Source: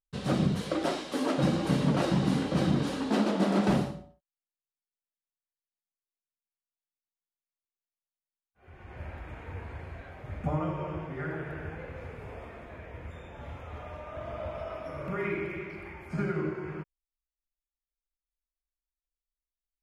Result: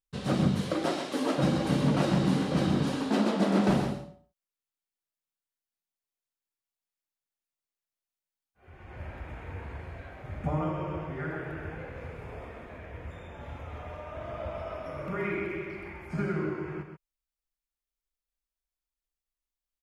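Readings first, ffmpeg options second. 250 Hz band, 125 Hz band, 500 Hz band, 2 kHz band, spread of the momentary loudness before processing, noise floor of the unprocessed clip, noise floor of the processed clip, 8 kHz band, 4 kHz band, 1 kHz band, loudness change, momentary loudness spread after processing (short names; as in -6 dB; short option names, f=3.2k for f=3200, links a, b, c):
+1.0 dB, +0.5 dB, +0.5 dB, +0.5 dB, 18 LU, under -85 dBFS, under -85 dBFS, +0.5 dB, +0.5 dB, +1.0 dB, +0.5 dB, 18 LU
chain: -af "aecho=1:1:131:0.422"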